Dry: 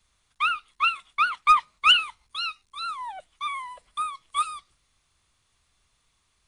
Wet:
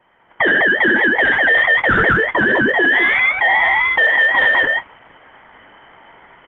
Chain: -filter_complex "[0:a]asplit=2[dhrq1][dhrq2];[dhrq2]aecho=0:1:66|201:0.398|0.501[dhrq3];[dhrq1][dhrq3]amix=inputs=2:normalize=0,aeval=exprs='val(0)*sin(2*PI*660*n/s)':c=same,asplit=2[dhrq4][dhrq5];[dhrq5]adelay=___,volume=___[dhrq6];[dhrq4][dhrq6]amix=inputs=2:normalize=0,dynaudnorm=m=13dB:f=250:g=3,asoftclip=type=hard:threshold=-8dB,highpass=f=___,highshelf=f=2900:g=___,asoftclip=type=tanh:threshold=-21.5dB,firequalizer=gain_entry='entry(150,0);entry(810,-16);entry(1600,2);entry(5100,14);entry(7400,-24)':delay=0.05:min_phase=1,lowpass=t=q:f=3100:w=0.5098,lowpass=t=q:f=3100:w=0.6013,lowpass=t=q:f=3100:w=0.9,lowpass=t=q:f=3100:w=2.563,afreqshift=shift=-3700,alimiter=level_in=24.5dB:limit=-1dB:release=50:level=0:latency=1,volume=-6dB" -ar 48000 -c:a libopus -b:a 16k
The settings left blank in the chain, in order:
23, -11.5dB, 610, -2.5